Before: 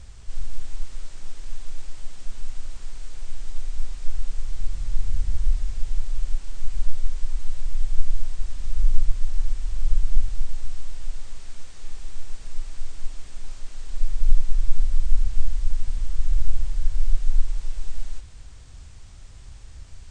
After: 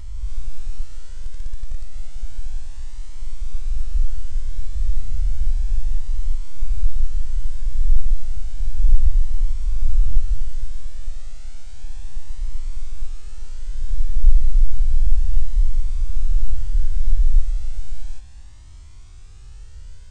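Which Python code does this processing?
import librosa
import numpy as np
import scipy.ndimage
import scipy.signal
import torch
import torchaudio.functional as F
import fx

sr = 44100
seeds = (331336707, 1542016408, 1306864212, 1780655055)

y = fx.spec_swells(x, sr, rise_s=1.53)
y = fx.power_curve(y, sr, exponent=0.7, at=(1.24, 1.93))
y = fx.comb_cascade(y, sr, direction='rising', hz=0.32)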